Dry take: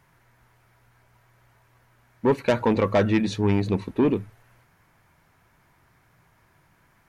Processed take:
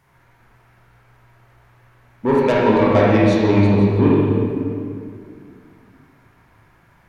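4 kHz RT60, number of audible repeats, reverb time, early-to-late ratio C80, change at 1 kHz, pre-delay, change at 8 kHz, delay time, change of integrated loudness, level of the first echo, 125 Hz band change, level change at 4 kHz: 1.6 s, none, 2.2 s, 0.0 dB, +8.0 dB, 23 ms, n/a, none, +7.0 dB, none, +9.5 dB, +4.5 dB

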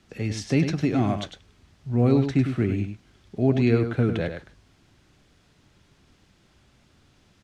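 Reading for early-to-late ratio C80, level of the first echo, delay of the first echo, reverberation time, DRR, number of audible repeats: none, -8.0 dB, 0.101 s, none, none, 1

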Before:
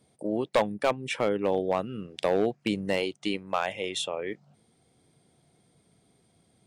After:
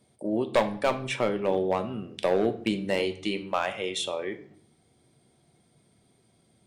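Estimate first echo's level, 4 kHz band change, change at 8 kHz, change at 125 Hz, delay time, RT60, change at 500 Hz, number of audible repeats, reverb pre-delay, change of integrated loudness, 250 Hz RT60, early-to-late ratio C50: none, +0.5 dB, +0.5 dB, +1.5 dB, none, 0.55 s, +1.0 dB, none, 3 ms, +1.0 dB, 0.90 s, 13.5 dB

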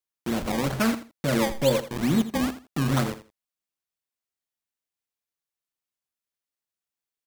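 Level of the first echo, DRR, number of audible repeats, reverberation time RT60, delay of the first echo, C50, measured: -13.5 dB, none, 2, none, 82 ms, none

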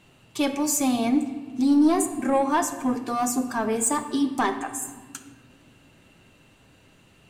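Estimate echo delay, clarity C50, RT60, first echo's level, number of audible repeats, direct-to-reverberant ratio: none, 10.5 dB, 1.6 s, none, none, 7.0 dB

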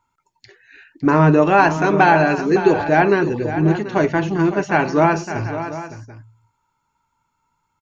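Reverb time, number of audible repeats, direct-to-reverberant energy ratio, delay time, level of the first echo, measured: none, 2, none, 0.56 s, -11.5 dB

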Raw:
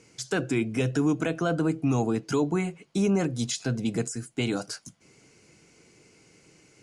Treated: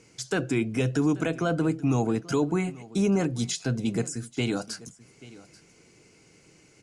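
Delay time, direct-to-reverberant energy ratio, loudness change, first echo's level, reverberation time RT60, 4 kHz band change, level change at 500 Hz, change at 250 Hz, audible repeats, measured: 0.835 s, none, +0.5 dB, -20.0 dB, none, 0.0 dB, 0.0 dB, +0.5 dB, 1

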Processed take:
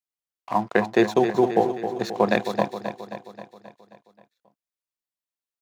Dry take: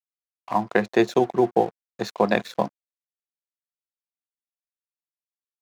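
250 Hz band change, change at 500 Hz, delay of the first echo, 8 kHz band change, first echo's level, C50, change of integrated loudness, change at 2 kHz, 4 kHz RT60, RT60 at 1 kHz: +1.0 dB, +1.0 dB, 0.266 s, n/a, -9.0 dB, none, 0.0 dB, +1.0 dB, none, none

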